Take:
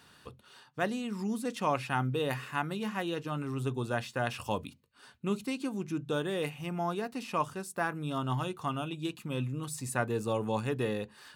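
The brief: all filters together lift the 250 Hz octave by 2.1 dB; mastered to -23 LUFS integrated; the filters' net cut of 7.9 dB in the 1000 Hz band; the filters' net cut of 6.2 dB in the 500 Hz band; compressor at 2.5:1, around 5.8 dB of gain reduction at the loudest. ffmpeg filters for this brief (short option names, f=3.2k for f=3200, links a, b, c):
-af "equalizer=f=250:t=o:g=5,equalizer=f=500:t=o:g=-7.5,equalizer=f=1k:t=o:g=-8,acompressor=threshold=-36dB:ratio=2.5,volume=16dB"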